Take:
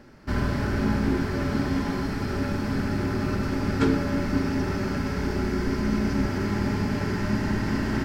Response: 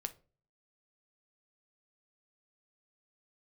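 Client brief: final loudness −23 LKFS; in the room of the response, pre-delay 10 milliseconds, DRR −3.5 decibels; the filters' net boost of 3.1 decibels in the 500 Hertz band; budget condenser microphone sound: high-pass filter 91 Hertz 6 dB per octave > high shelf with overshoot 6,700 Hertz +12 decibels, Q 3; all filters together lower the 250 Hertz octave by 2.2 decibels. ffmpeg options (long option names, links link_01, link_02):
-filter_complex "[0:a]equalizer=frequency=250:width_type=o:gain=-3.5,equalizer=frequency=500:width_type=o:gain=6,asplit=2[link_01][link_02];[1:a]atrim=start_sample=2205,adelay=10[link_03];[link_02][link_03]afir=irnorm=-1:irlink=0,volume=5dB[link_04];[link_01][link_04]amix=inputs=2:normalize=0,highpass=frequency=91:poles=1,highshelf=frequency=6700:width_type=q:width=3:gain=12,volume=-1dB"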